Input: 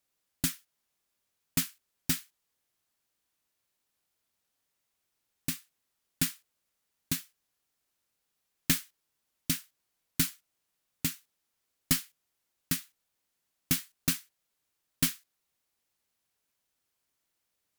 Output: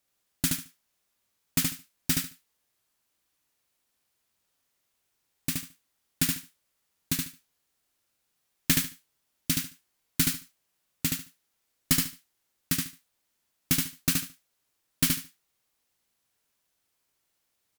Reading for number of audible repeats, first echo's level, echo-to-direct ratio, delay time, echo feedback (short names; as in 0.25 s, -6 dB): 3, -3.5 dB, -3.5 dB, 73 ms, 20%